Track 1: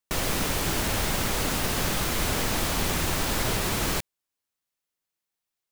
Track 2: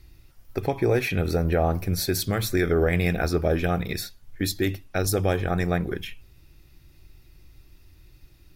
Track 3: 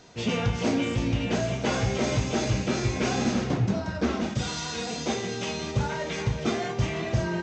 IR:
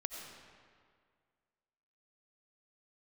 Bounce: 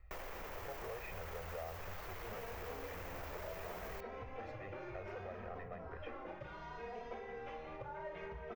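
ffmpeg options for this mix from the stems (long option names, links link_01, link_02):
-filter_complex "[0:a]alimiter=level_in=0.5dB:limit=-24dB:level=0:latency=1,volume=-0.5dB,asoftclip=type=tanh:threshold=-31dB,volume=-4dB[link_01];[1:a]asoftclip=type=tanh:threshold=-23.5dB,aecho=1:1:1.6:0.83,volume=-11.5dB[link_02];[2:a]asplit=2[link_03][link_04];[link_04]adelay=2.8,afreqshift=0.65[link_05];[link_03][link_05]amix=inputs=2:normalize=1,adelay=2050,volume=-7.5dB[link_06];[link_02][link_06]amix=inputs=2:normalize=0,lowpass=2300,alimiter=level_in=6dB:limit=-24dB:level=0:latency=1:release=298,volume=-6dB,volume=0dB[link_07];[link_01][link_07]amix=inputs=2:normalize=0,equalizer=frequency=125:width_type=o:width=1:gain=-10,equalizer=frequency=250:width_type=o:width=1:gain=-11,equalizer=frequency=500:width_type=o:width=1:gain=5,equalizer=frequency=1000:width_type=o:width=1:gain=5,equalizer=frequency=2000:width_type=o:width=1:gain=5,equalizer=frequency=4000:width_type=o:width=1:gain=-9,equalizer=frequency=8000:width_type=o:width=1:gain=-10,acrossover=split=660|3500[link_08][link_09][link_10];[link_08]acompressor=threshold=-46dB:ratio=4[link_11];[link_09]acompressor=threshold=-52dB:ratio=4[link_12];[link_10]acompressor=threshold=-52dB:ratio=4[link_13];[link_11][link_12][link_13]amix=inputs=3:normalize=0,equalizer=frequency=11000:width_type=o:width=0.35:gain=-15"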